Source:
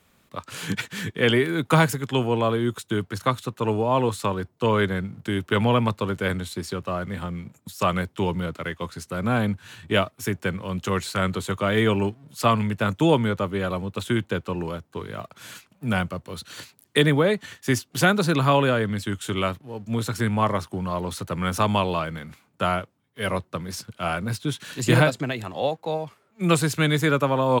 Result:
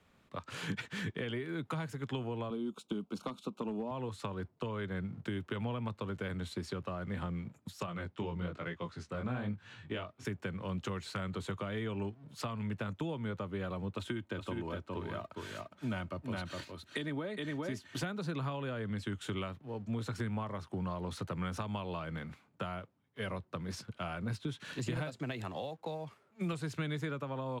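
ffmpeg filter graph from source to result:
-filter_complex "[0:a]asettb=1/sr,asplit=3[a][b][c];[a]atrim=end=2.504[d];[b]atrim=start=2.5:end=3.91,asetpts=PTS-STARTPTS,afade=t=in:d=0.004:c=qsin,afade=t=out:st=1.406:d=0.004:c=qsin,asuperstop=centerf=1800:order=4:qfactor=1.8,lowshelf=f=150:t=q:w=3:g=-10.5,asoftclip=type=hard:threshold=-13.5dB[e];[c]atrim=start=3.906[f];[d][e]acrossfade=d=0.004:c1=hsin:c2=qsin[g];[g][f]acrossfade=d=0.004:c1=qsin:c2=hsin,asettb=1/sr,asplit=3[h][i][j];[h]atrim=end=7.864[k];[i]atrim=start=7.86:end=10.25,asetpts=PTS-STARTPTS,afade=t=in:d=0.004:c=qsin,afade=t=out:st=2.386:d=0.004:c=qsin,lowpass=7.4k,flanger=delay=17:depth=7.4:speed=1.1[l];[j]atrim=start=10.246[m];[k][l]acrossfade=d=0.004:c1=hsin:c2=qsin[n];[n][m]acrossfade=d=0.004:c1=qsin:c2=hsin,asettb=1/sr,asplit=3[o][p][q];[o]atrim=end=13.974[r];[p]atrim=start=13.97:end=18.03,asetpts=PTS-STARTPTS,afade=t=in:d=0.004:c=qsin,afade=t=out:st=4.056:d=0.004:c=qsin,aecho=1:1:3.2:0.41,atrim=end_sample=179046,aecho=1:1:412:0.473,atrim=end_sample=179046[s];[q]atrim=start=18.026[t];[r][s]acrossfade=d=0.004:c1=hsin:c2=qsin[u];[u][t]acrossfade=d=0.004:c1=qsin:c2=hsin,asettb=1/sr,asplit=3[v][w][x];[v]atrim=end=24.964[y];[w]atrim=start=24.96:end=26.53,asetpts=PTS-STARTPTS,afade=t=in:d=0.004:c=qsin,afade=t=out:st=1.566:d=0.004:c=qsin,highpass=54,highshelf=f=6k:g=7.5,acrusher=bits=7:mode=log:mix=0:aa=0.000001[z];[x]atrim=start=26.526[aa];[y][z]acrossfade=d=0.004:c1=hsin:c2=qsin[ab];[ab][aa]acrossfade=d=0.004:c1=qsin:c2=hsin,acompressor=threshold=-28dB:ratio=6,aemphasis=mode=reproduction:type=50fm,acrossover=split=220|3000[ac][ad][ae];[ad]acompressor=threshold=-32dB:ratio=6[af];[ac][af][ae]amix=inputs=3:normalize=0,volume=-5dB"

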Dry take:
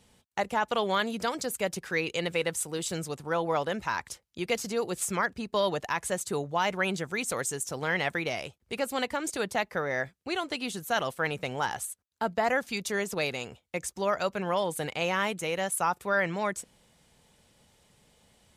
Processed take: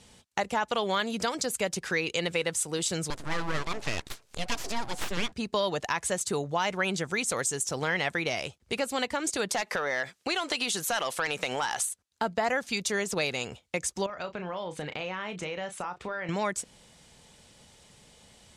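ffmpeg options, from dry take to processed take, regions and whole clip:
-filter_complex "[0:a]asettb=1/sr,asplit=3[a][b][c];[a]atrim=end=3.104[d];[b]atrim=start=3.1:end=5.32,asetpts=PTS-STARTPTS,afade=t=in:d=0.004:c=qsin,afade=t=out:st=2.216:d=0.004:c=qsin,acompressor=mode=upward:threshold=-38dB:ratio=2.5:attack=3.2:release=140:knee=2.83:detection=peak,bandreject=f=123:t=h:w=4,bandreject=f=246:t=h:w=4,bandreject=f=369:t=h:w=4,bandreject=f=492:t=h:w=4,aeval=exprs='abs(val(0))':c=same[e];[c]atrim=start=5.316[f];[d][e]acrossfade=d=0.004:c1=hsin:c2=qsin[g];[g][f]acrossfade=d=0.004:c1=qsin:c2=hsin,asettb=1/sr,asplit=3[h][i][j];[h]atrim=end=9.494[k];[i]atrim=start=9.49:end=11.89,asetpts=PTS-STARTPTS,afade=t=in:d=0.004:c=qsin,afade=t=out:st=2.396:d=0.004:c=qsin,highpass=f=600:p=1,aeval=exprs='0.188*sin(PI/2*2*val(0)/0.188)':c=same,acompressor=threshold=-30dB:ratio=3:attack=3.2:release=140:knee=1:detection=peak[l];[j]atrim=start=11.886[m];[k][l]acrossfade=d=0.004:c1=hsin:c2=qsin[n];[n][m]acrossfade=d=0.004:c1=qsin:c2=hsin,asettb=1/sr,asplit=3[o][p][q];[o]atrim=end=14.064[r];[p]atrim=start=14.06:end=16.29,asetpts=PTS-STARTPTS,afade=t=in:d=0.004:c=qsin,afade=t=out:st=2.226:d=0.004:c=qsin,lowpass=3.6k,acompressor=threshold=-38dB:ratio=5:attack=3.2:release=140:knee=1:detection=peak,asplit=2[s][t];[t]adelay=33,volume=-10dB[u];[s][u]amix=inputs=2:normalize=0,atrim=end_sample=98343[v];[q]atrim=start=16.286[w];[r][v]acrossfade=d=0.004:c1=hsin:c2=qsin[x];[x][w]acrossfade=d=0.004:c1=qsin:c2=hsin,lowpass=7.8k,highshelf=f=4.5k:g=8,acompressor=threshold=-35dB:ratio=2,volume=5.5dB"

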